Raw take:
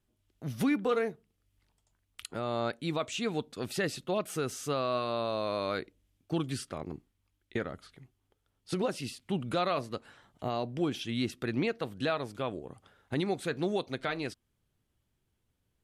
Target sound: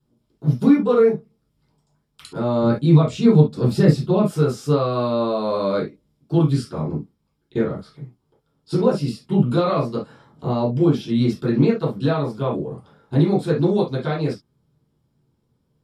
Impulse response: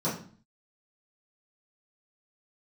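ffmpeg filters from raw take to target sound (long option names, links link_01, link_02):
-filter_complex "[0:a]asplit=3[link_01][link_02][link_03];[link_01]afade=type=out:start_time=0.52:duration=0.02[link_04];[link_02]agate=range=-18dB:threshold=-32dB:ratio=16:detection=peak,afade=type=in:start_time=0.52:duration=0.02,afade=type=out:start_time=0.95:duration=0.02[link_05];[link_03]afade=type=in:start_time=0.95:duration=0.02[link_06];[link_04][link_05][link_06]amix=inputs=3:normalize=0,asettb=1/sr,asplit=3[link_07][link_08][link_09];[link_07]atrim=end=2.624[link_10];[link_08]atrim=start=2.62:end=4.25,asetpts=PTS-STARTPTS,afade=type=in:duration=0.004:curve=qsin,afade=type=out:start_time=1.626:duration=0.004:curve=qsin,lowshelf=frequency=200:gain=11[link_11];[link_09]atrim=start=4.246[link_12];[link_10][link_11]acrossfade=duration=0.004:curve1=hsin:curve2=qsin[link_13];[link_13][link_12]acrossfade=duration=0.004:curve1=qsin:curve2=hsin[link_14];[1:a]atrim=start_sample=2205,atrim=end_sample=3087,asetrate=39690,aresample=44100[link_15];[link_14][link_15]afir=irnorm=-1:irlink=0,volume=-2dB"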